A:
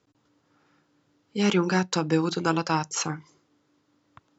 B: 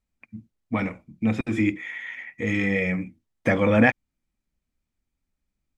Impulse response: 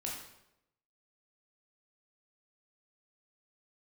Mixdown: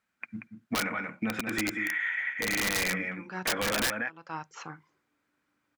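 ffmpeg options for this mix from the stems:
-filter_complex "[0:a]aemphasis=mode=reproduction:type=75kf,adelay=1600,volume=-15dB[a];[1:a]highpass=160,equalizer=f=1.5k:w=4.1:g=10.5,acompressor=threshold=-22dB:ratio=8,volume=0.5dB,asplit=3[b][c][d];[c]volume=-8dB[e];[d]apad=whole_len=263815[f];[a][f]sidechaincompress=threshold=-50dB:ratio=4:attack=41:release=260[g];[e]aecho=0:1:183:1[h];[g][b][h]amix=inputs=3:normalize=0,equalizer=f=1.6k:w=0.49:g=9.5,aeval=exprs='(mod(4.22*val(0)+1,2)-1)/4.22':c=same,alimiter=limit=-21.5dB:level=0:latency=1:release=430"

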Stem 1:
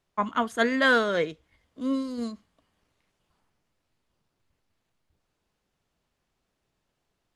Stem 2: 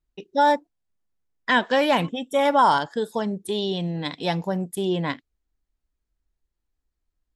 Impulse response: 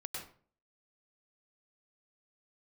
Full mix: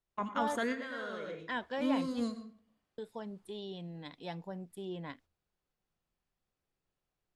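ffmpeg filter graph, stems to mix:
-filter_complex "[0:a]alimiter=limit=-22dB:level=0:latency=1:release=59,volume=-5dB,asplit=2[a][b];[b]volume=-5.5dB[c];[1:a]highshelf=f=5.3k:g=-6.5,bandreject=f=6.3k:w=6.8,volume=-17dB,asplit=3[d][e][f];[d]atrim=end=2.3,asetpts=PTS-STARTPTS,afade=t=out:st=2.296:d=0.004:c=hsin[g];[e]atrim=start=2.3:end=2.98,asetpts=PTS-STARTPTS,volume=0[h];[f]atrim=start=2.98,asetpts=PTS-STARTPTS,afade=t=in:d=0.004:c=hsin[i];[g][h][i]concat=n=3:v=0:a=1,asplit=2[j][k];[k]apad=whole_len=324305[l];[a][l]sidechaingate=range=-33dB:threshold=-59dB:ratio=16:detection=peak[m];[2:a]atrim=start_sample=2205[n];[c][n]afir=irnorm=-1:irlink=0[o];[m][j][o]amix=inputs=3:normalize=0"

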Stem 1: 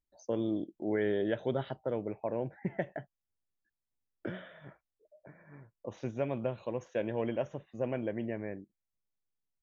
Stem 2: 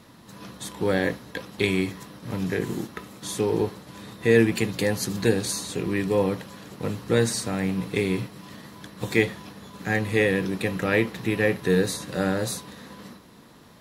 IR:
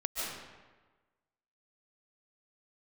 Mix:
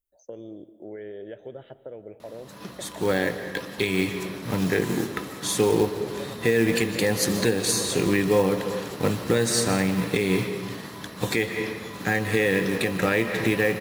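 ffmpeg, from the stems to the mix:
-filter_complex "[0:a]equalizer=f=125:t=o:w=1:g=-4,equalizer=f=250:t=o:w=1:g=-7,equalizer=f=500:t=o:w=1:g=4,equalizer=f=1k:t=o:w=1:g=-9,equalizer=f=4k:t=o:w=1:g=-11,acompressor=threshold=-36dB:ratio=4,aexciter=amount=1.5:drive=3.8:freq=2.7k,volume=-1dB,asplit=2[a][b];[b]volume=-17.5dB[c];[1:a]lowshelf=f=260:g=-4.5,dynaudnorm=f=270:g=11:m=11.5dB,acrusher=bits=5:mode=log:mix=0:aa=0.000001,adelay=2200,volume=-1dB,asplit=2[d][e];[e]volume=-12.5dB[f];[2:a]atrim=start_sample=2205[g];[c][f]amix=inputs=2:normalize=0[h];[h][g]afir=irnorm=-1:irlink=0[i];[a][d][i]amix=inputs=3:normalize=0,alimiter=limit=-10.5dB:level=0:latency=1:release=246"

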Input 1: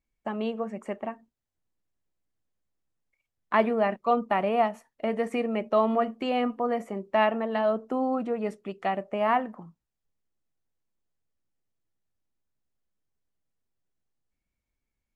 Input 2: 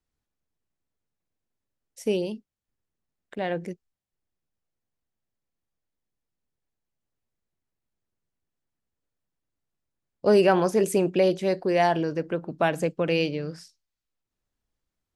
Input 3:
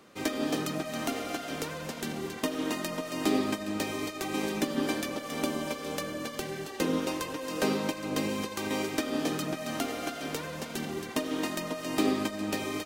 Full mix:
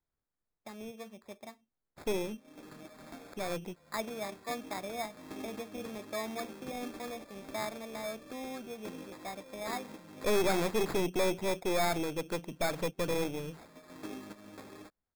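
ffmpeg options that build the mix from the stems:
-filter_complex "[0:a]adelay=400,volume=-14.5dB[a];[1:a]aeval=exprs='(tanh(12.6*val(0)+0.65)-tanh(0.65))/12.6':c=same,volume=-3dB,asplit=2[b][c];[2:a]flanger=delay=8.4:depth=3.6:regen=-34:speed=1.4:shape=triangular,adelay=2050,volume=-13dB[d];[c]apad=whole_len=657163[e];[d][e]sidechaincompress=threshold=-53dB:ratio=8:attack=16:release=314[f];[a][b][f]amix=inputs=3:normalize=0,acrusher=samples=15:mix=1:aa=0.000001"

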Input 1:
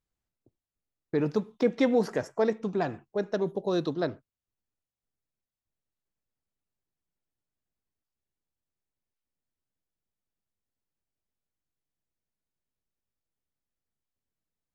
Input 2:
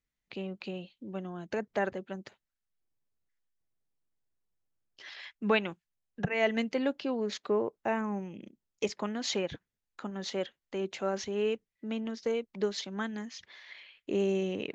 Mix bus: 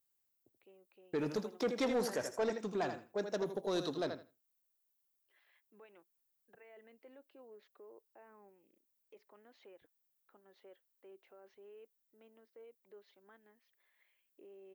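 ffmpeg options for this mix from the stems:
-filter_complex "[0:a]aemphasis=mode=production:type=bsi,volume=-4dB,asplit=3[a][b][c];[b]volume=-10dB[d];[1:a]alimiter=level_in=1.5dB:limit=-24dB:level=0:latency=1:release=25,volume=-1.5dB,lowpass=2.4k,lowshelf=f=260:t=q:w=1.5:g=-11.5,adelay=300,volume=-13dB[e];[c]apad=whole_len=663570[f];[e][f]sidechaingate=range=-11dB:threshold=-52dB:ratio=16:detection=peak[g];[d]aecho=0:1:81|162|243:1|0.16|0.0256[h];[a][g][h]amix=inputs=3:normalize=0,asoftclip=type=tanh:threshold=-27.5dB"

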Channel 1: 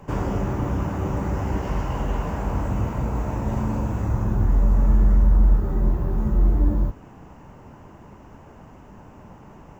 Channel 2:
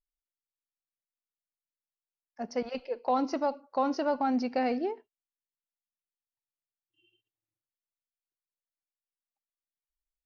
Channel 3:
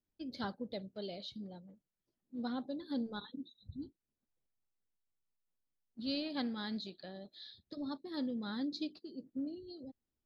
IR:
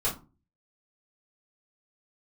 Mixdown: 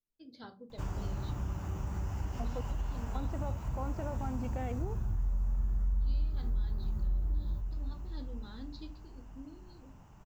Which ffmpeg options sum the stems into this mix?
-filter_complex "[0:a]equalizer=f=125:t=o:w=1:g=-3,equalizer=f=250:t=o:w=1:g=-10,equalizer=f=500:t=o:w=1:g=-11,equalizer=f=1k:t=o:w=1:g=-5,equalizer=f=2k:t=o:w=1:g=-7,adelay=700,volume=-5.5dB,asplit=2[a][b];[b]volume=-13dB[c];[1:a]afwtdn=0.00631,alimiter=level_in=2.5dB:limit=-24dB:level=0:latency=1,volume=-2.5dB,volume=-4dB,asplit=3[d][e][f];[d]atrim=end=2.61,asetpts=PTS-STARTPTS,afade=t=out:st=2.606:d=0.004:c=hsin[g];[e]atrim=start=2.61:end=3.15,asetpts=PTS-STARTPTS,volume=0[h];[f]atrim=start=3.15,asetpts=PTS-STARTPTS,afade=t=in:d=0.004:c=hsin[i];[g][h][i]concat=n=3:v=0:a=1[j];[2:a]volume=-11dB,asplit=2[k][l];[l]volume=-12.5dB[m];[3:a]atrim=start_sample=2205[n];[m][n]afir=irnorm=-1:irlink=0[o];[c]aecho=0:1:508|1016|1524|2032|2540|3048|3556|4064:1|0.52|0.27|0.141|0.0731|0.038|0.0198|0.0103[p];[a][j][k][o][p]amix=inputs=5:normalize=0,acompressor=threshold=-32dB:ratio=2.5"

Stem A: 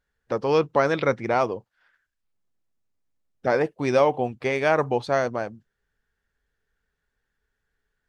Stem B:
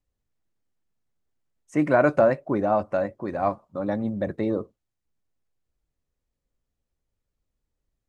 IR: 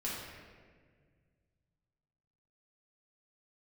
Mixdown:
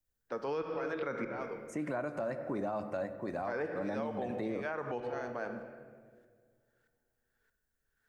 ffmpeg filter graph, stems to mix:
-filter_complex "[0:a]highpass=200,equalizer=f=1.5k:w=2.9:g=5.5,aeval=exprs='val(0)*pow(10,-31*if(lt(mod(-1.6*n/s,1),2*abs(-1.6)/1000),1-mod(-1.6*n/s,1)/(2*abs(-1.6)/1000),(mod(-1.6*n/s,1)-2*abs(-1.6)/1000)/(1-2*abs(-1.6)/1000))/20)':c=same,volume=0.5dB,asplit=2[a][b];[b]volume=-8dB[c];[1:a]aemphasis=mode=production:type=50kf,volume=-8dB,asplit=2[d][e];[e]volume=-14.5dB[f];[2:a]atrim=start_sample=2205[g];[c][f]amix=inputs=2:normalize=0[h];[h][g]afir=irnorm=-1:irlink=0[i];[a][d][i]amix=inputs=3:normalize=0,acrossover=split=160|2200[j][k][l];[j]acompressor=threshold=-48dB:ratio=4[m];[k]acompressor=threshold=-28dB:ratio=4[n];[l]acompressor=threshold=-52dB:ratio=4[o];[m][n][o]amix=inputs=3:normalize=0,alimiter=level_in=3dB:limit=-24dB:level=0:latency=1:release=90,volume=-3dB"

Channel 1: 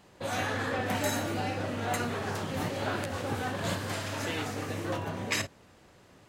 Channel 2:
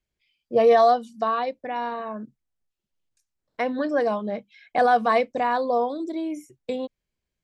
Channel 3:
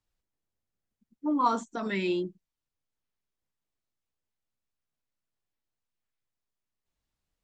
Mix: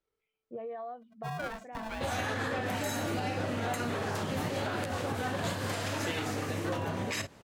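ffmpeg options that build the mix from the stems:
-filter_complex "[0:a]adelay=1800,volume=2.5dB[a];[1:a]lowpass=f=2.9k:w=0.5412,lowpass=f=2.9k:w=1.3066,acompressor=threshold=-29dB:ratio=3,volume=-11dB[b];[2:a]lowshelf=f=230:g=-5,aeval=exprs='val(0)*sgn(sin(2*PI*440*n/s))':c=same,volume=0dB[c];[b][c]amix=inputs=2:normalize=0,highshelf=f=3.5k:g=-11.5,acompressor=threshold=-36dB:ratio=4,volume=0dB[d];[a][d]amix=inputs=2:normalize=0,alimiter=limit=-23.5dB:level=0:latency=1:release=133"

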